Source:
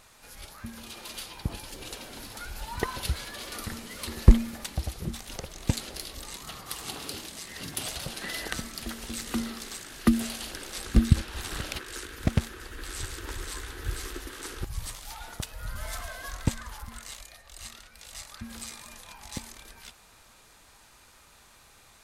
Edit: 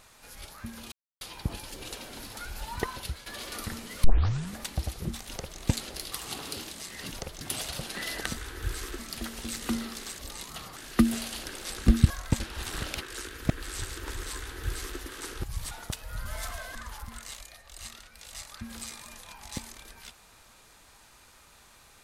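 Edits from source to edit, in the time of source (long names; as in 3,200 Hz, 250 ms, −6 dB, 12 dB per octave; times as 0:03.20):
0:00.92–0:01.21: silence
0:02.70–0:03.26: fade out, to −11 dB
0:04.04: tape start 0.54 s
0:05.28–0:05.58: duplicate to 0:07.68
0:06.12–0:06.69: move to 0:09.84
0:12.28–0:12.71: remove
0:13.59–0:14.21: duplicate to 0:08.64
0:14.92–0:15.21: remove
0:16.25–0:16.55: move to 0:11.18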